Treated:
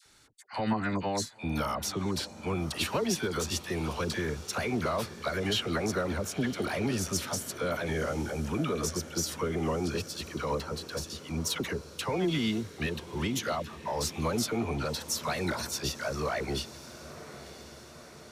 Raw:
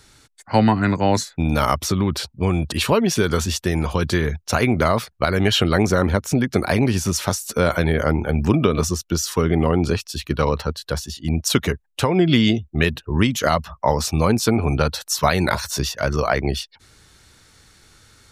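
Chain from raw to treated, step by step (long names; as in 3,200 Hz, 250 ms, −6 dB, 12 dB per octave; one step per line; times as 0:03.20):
one-sided soft clipper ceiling −4 dBFS
low-shelf EQ 180 Hz −8 dB
brickwall limiter −12.5 dBFS, peak gain reduction 8 dB
all-pass dispersion lows, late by 57 ms, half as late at 900 Hz
on a send: feedback delay with all-pass diffusion 1,000 ms, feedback 61%, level −15 dB
on the sum: level −7.5 dB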